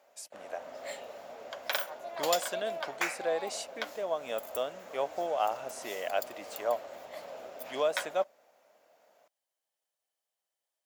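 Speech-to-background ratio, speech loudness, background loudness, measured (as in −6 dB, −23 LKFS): 4.5 dB, −35.0 LKFS, −39.5 LKFS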